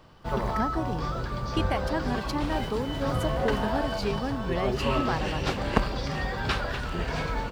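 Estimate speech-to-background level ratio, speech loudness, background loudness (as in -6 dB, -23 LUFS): -3.0 dB, -33.0 LUFS, -30.0 LUFS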